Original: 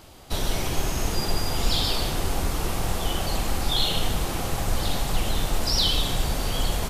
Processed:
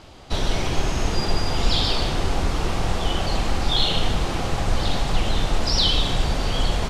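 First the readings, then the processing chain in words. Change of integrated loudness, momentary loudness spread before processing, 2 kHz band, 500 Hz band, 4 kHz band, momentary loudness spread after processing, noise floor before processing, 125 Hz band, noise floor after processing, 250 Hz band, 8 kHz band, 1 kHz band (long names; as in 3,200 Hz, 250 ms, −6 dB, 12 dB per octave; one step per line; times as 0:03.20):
+2.5 dB, 6 LU, +3.5 dB, +3.5 dB, +2.5 dB, 6 LU, −30 dBFS, +3.5 dB, −27 dBFS, +3.5 dB, −3.0 dB, +3.5 dB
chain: low-pass filter 5,500 Hz 12 dB per octave
level +3.5 dB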